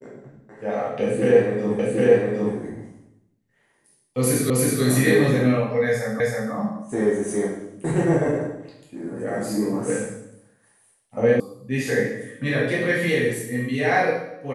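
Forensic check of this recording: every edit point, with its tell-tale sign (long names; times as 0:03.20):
0:01.79: the same again, the last 0.76 s
0:04.50: the same again, the last 0.32 s
0:06.20: the same again, the last 0.32 s
0:11.40: cut off before it has died away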